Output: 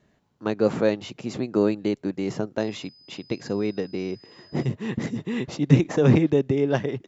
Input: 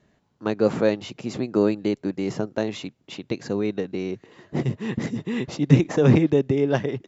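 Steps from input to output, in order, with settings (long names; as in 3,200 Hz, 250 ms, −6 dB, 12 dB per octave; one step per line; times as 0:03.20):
0:02.59–0:04.65: steady tone 5,000 Hz −50 dBFS
level −1 dB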